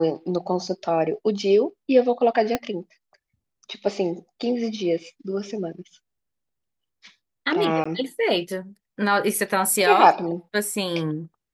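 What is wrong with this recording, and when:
2.55 pop -8 dBFS
7.84–7.86 gap 15 ms

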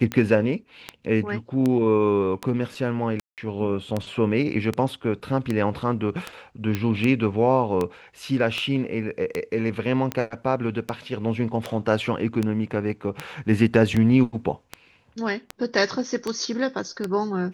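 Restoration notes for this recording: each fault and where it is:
tick 78 rpm -12 dBFS
3.2–3.38 gap 0.178 s
6.75 pop -12 dBFS

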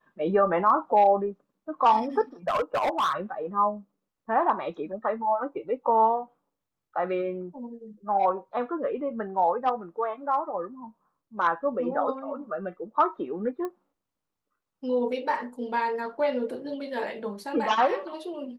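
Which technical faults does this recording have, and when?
2.48–3.13 clipped -21.5 dBFS
13.65 pop -22 dBFS

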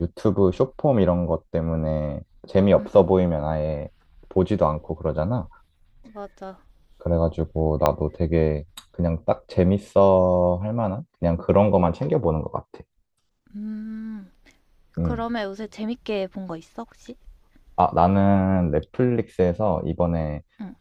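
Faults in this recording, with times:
7.86 pop -6 dBFS

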